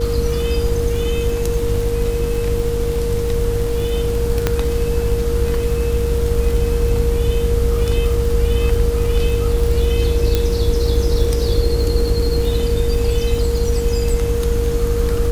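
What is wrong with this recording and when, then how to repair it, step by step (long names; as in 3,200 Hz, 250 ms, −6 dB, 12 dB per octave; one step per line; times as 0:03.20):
surface crackle 59 per second −23 dBFS
mains hum 50 Hz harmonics 7 −23 dBFS
whistle 470 Hz −20 dBFS
0:04.47: click −2 dBFS
0:10.35: click −3 dBFS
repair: click removal
hum removal 50 Hz, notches 7
notch filter 470 Hz, Q 30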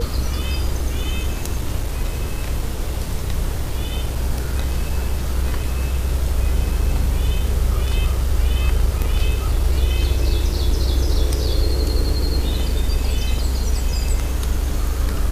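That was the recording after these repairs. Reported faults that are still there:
none of them is left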